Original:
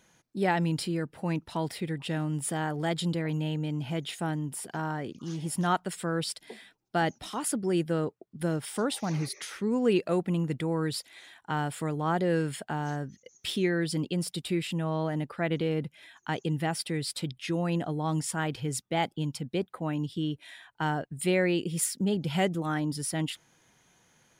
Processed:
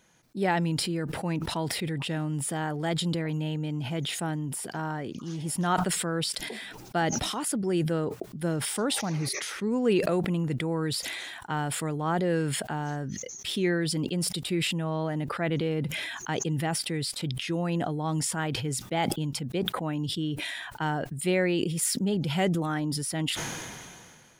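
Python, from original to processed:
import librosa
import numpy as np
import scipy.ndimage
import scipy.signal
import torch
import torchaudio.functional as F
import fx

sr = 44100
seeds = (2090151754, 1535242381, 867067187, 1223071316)

y = fx.sustainer(x, sr, db_per_s=28.0)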